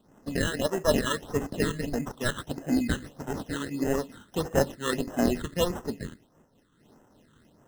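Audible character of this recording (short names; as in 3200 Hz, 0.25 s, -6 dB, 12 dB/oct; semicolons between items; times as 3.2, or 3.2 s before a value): aliases and images of a low sample rate 2300 Hz, jitter 0%; phasing stages 8, 1.6 Hz, lowest notch 680–4200 Hz; noise-modulated level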